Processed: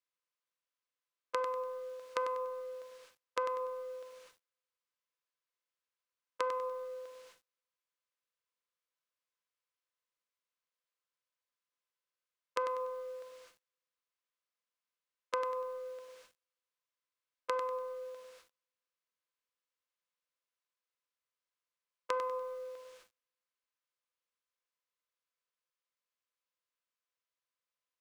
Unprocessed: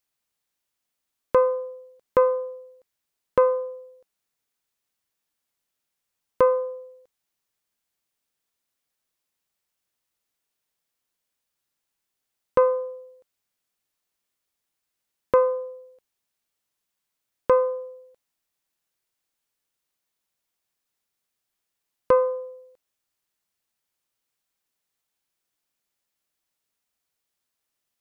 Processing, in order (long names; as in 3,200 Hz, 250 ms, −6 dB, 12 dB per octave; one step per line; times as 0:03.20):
compressor on every frequency bin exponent 0.6
treble cut that deepens with the level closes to 2,200 Hz, closed at −16.5 dBFS
high-pass filter 700 Hz 6 dB per octave
high-frequency loss of the air 75 metres
rectangular room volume 720 cubic metres, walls mixed, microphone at 0.71 metres
downward compressor 2 to 1, threshold −42 dBFS, peak gain reduction 14.5 dB
noise gate −56 dBFS, range −35 dB
spectral tilt +4.5 dB per octave
feedback echo at a low word length 97 ms, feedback 35%, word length 10 bits, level −9 dB
level +1 dB